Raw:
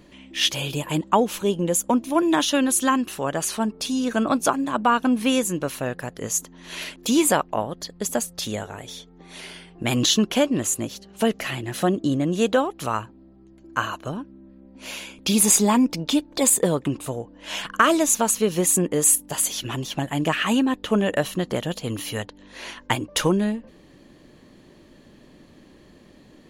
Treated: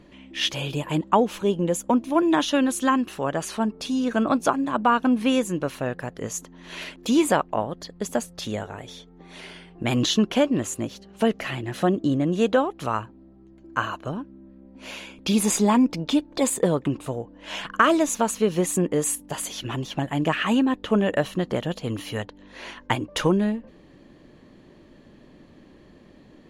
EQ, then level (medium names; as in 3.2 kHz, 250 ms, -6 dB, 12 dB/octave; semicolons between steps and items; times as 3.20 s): treble shelf 4.3 kHz -9 dB; treble shelf 12 kHz -6 dB; 0.0 dB